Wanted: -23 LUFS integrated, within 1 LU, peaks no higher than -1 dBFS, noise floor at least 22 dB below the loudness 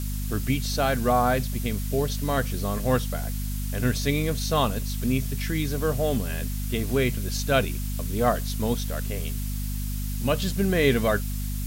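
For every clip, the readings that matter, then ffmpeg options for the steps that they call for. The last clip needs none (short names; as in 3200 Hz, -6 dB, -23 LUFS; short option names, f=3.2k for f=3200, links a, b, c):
hum 50 Hz; harmonics up to 250 Hz; hum level -27 dBFS; noise floor -29 dBFS; noise floor target -48 dBFS; loudness -26.0 LUFS; peak -8.0 dBFS; loudness target -23.0 LUFS
-> -af "bandreject=f=50:t=h:w=6,bandreject=f=100:t=h:w=6,bandreject=f=150:t=h:w=6,bandreject=f=200:t=h:w=6,bandreject=f=250:t=h:w=6"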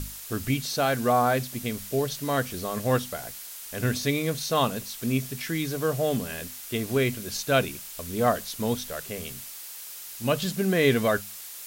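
hum none; noise floor -41 dBFS; noise floor target -49 dBFS
-> -af "afftdn=nr=8:nf=-41"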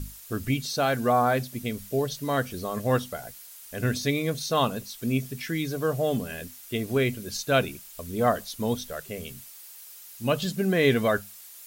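noise floor -46 dBFS; noise floor target -50 dBFS
-> -af "afftdn=nr=6:nf=-46"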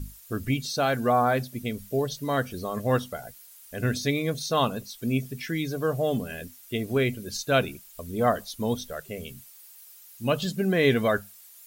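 noise floor -50 dBFS; loudness -27.0 LUFS; peak -9.5 dBFS; loudness target -23.0 LUFS
-> -af "volume=4dB"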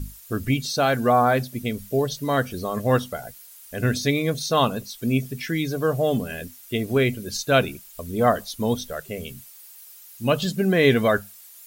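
loudness -23.0 LUFS; peak -5.5 dBFS; noise floor -46 dBFS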